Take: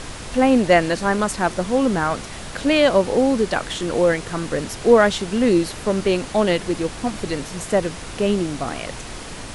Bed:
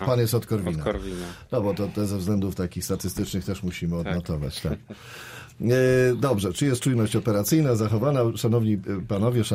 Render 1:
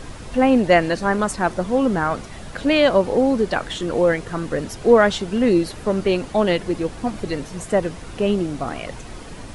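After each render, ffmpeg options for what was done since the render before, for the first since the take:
-af "afftdn=nr=8:nf=-34"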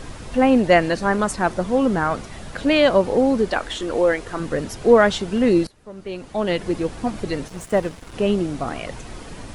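-filter_complex "[0:a]asettb=1/sr,asplit=3[a][b][c];[a]atrim=end=3.504[d];[b]atrim=start=3.5:end=4.4,asetpts=PTS-STARTPTS,afade=t=in:d=0.004:c=qsin,afade=t=out:st=0.896:d=0.004:c=qsin,equalizer=f=150:t=o:w=0.77:g=-12[e];[c]atrim=start=4.396[f];[d][e]acrossfade=d=0.004:c1=hsin:c2=qsin[g];[g][f]acrossfade=d=0.004:c1=qsin:c2=hsin,asettb=1/sr,asplit=3[h][i][j];[h]atrim=end=7.484[k];[i]atrim=start=7.48:end=8.14,asetpts=PTS-STARTPTS,afade=t=in:d=0.004:c=qsin,afade=t=out:st=0.656:d=0.004:c=qsin,aeval=exprs='sgn(val(0))*max(abs(val(0))-0.0119,0)':c=same[l];[j]atrim=start=8.136[m];[k][l]acrossfade=d=0.004:c1=hsin:c2=qsin[n];[n][m]acrossfade=d=0.004:c1=qsin:c2=hsin,asplit=2[o][p];[o]atrim=end=5.67,asetpts=PTS-STARTPTS,afade=t=out:st=5.666:d=0.004:c=hsin:silence=0.0841395[q];[p]atrim=start=5.67,asetpts=PTS-STARTPTS,afade=t=in:d=1:c=qua:silence=0.0841395[r];[q][r]concat=n=2:v=0:a=1"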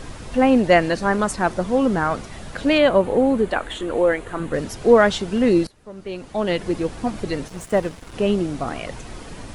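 -filter_complex "[0:a]asettb=1/sr,asplit=3[a][b][c];[a]atrim=end=2.784[d];[b]atrim=start=2.78:end=4.54,asetpts=PTS-STARTPTS,afade=t=in:d=0.004:c=qsin,afade=t=out:st=1.756:d=0.004:c=qsin,equalizer=f=5.3k:t=o:w=0.62:g=-13[e];[c]atrim=start=4.536[f];[d][e]acrossfade=d=0.004:c1=hsin:c2=qsin[g];[g][f]acrossfade=d=0.004:c1=qsin:c2=hsin"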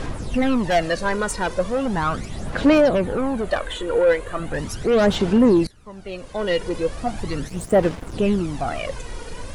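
-af "asoftclip=type=tanh:threshold=-15.5dB,aphaser=in_gain=1:out_gain=1:delay=2.1:decay=0.58:speed=0.38:type=sinusoidal"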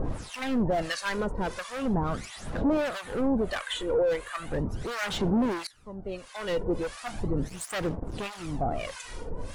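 -filter_complex "[0:a]asoftclip=type=hard:threshold=-20.5dB,acrossover=split=950[a][b];[a]aeval=exprs='val(0)*(1-1/2+1/2*cos(2*PI*1.5*n/s))':c=same[c];[b]aeval=exprs='val(0)*(1-1/2-1/2*cos(2*PI*1.5*n/s))':c=same[d];[c][d]amix=inputs=2:normalize=0"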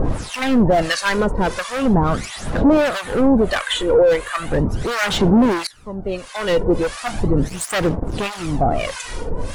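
-af "volume=11.5dB"

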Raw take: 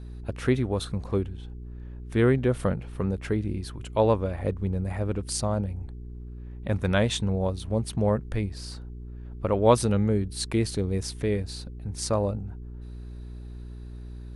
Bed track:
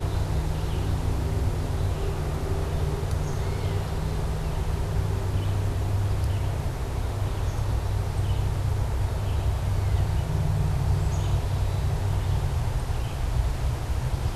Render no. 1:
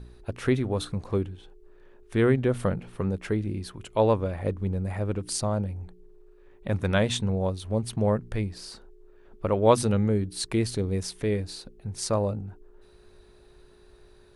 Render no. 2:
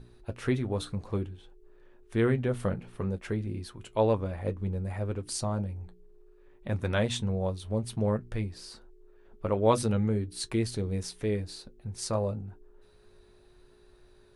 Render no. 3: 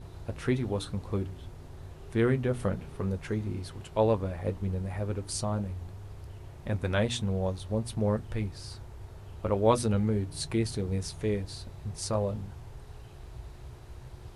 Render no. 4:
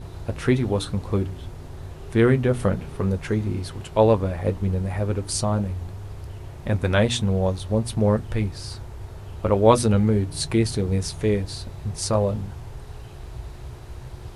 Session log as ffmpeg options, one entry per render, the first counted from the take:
-af "bandreject=f=60:t=h:w=4,bandreject=f=120:t=h:w=4,bandreject=f=180:t=h:w=4,bandreject=f=240:t=h:w=4,bandreject=f=300:t=h:w=4"
-af "flanger=delay=7.8:depth=1.9:regen=-53:speed=0.58:shape=triangular"
-filter_complex "[1:a]volume=-19dB[a];[0:a][a]amix=inputs=2:normalize=0"
-af "volume=8dB"

